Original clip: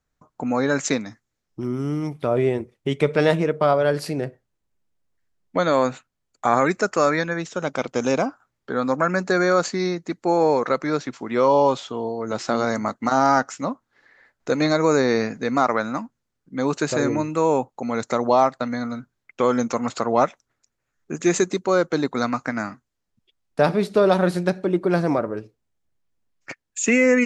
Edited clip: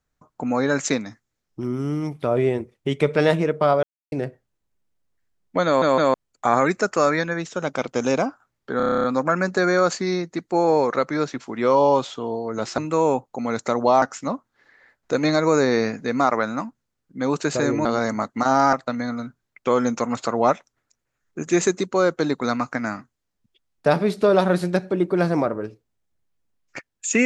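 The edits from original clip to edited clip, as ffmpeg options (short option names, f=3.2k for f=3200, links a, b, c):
-filter_complex "[0:a]asplit=19[a][b][c][d][e][f][g][h][i][j][k][l][m][n][o][p][q][r][s];[a]atrim=end=3.83,asetpts=PTS-STARTPTS,afade=t=out:st=3.826:d=0.004:c=hsin[t];[b]atrim=start=3.83:end=4.12,asetpts=PTS-STARTPTS,volume=0[u];[c]atrim=start=4.12:end=5.822,asetpts=PTS-STARTPTS,afade=t=in:d=0.004:c=hsin[v];[d]atrim=start=5.658:end=5.822[w];[e]atrim=start=5.658:end=5.822[x];[f]atrim=start=6.138:end=8.802[y];[g]atrim=start=8.768:end=8.802[z];[h]atrim=start=8.768:end=8.802[aa];[i]atrim=start=8.768:end=8.802[ab];[j]atrim=start=8.768:end=8.802[ac];[k]atrim=start=8.768:end=8.802[ad];[l]atrim=start=8.768:end=8.802[ae];[m]atrim=start=8.768:end=8.802[af];[n]atrim=start=8.768:end=8.802[ag];[o]atrim=start=8.768:end=12.512[ah];[p]atrim=start=17.218:end=18.462[ai];[q]atrim=start=13.388:end=17.222[aj];[r]atrim=start=12.508:end=13.392[ak];[s]atrim=start=18.458[al];[t][u][v]concat=n=3:v=0:a=1[am];[am][w]acrossfade=d=0.004:c1=hsin:c2=hsin[an];[an][x]acrossfade=d=0.004:c1=hsin:c2=hsin[ao];[ao][y]acrossfade=d=0.004:c1=hsin:c2=hsin[ap];[ap][z]acrossfade=d=0.004:c1=hsin:c2=hsin[aq];[aq][aa]acrossfade=d=0.004:c1=hsin:c2=hsin[ar];[ar][ab]acrossfade=d=0.004:c1=hsin:c2=hsin[as];[as][ac]acrossfade=d=0.004:c1=hsin:c2=hsin[at];[at][ad]acrossfade=d=0.004:c1=hsin:c2=hsin[au];[au][ae]acrossfade=d=0.004:c1=hsin:c2=hsin[av];[av][af]acrossfade=d=0.004:c1=hsin:c2=hsin[aw];[aw][ag]acrossfade=d=0.004:c1=hsin:c2=hsin[ax];[ax][ah]acrossfade=d=0.004:c1=hsin:c2=hsin[ay];[ay][ai]acrossfade=d=0.004:c1=hsin:c2=hsin[az];[az][aj]acrossfade=d=0.004:c1=hsin:c2=hsin[ba];[ba][ak]acrossfade=d=0.004:c1=hsin:c2=hsin[bb];[bb][al]acrossfade=d=0.004:c1=hsin:c2=hsin"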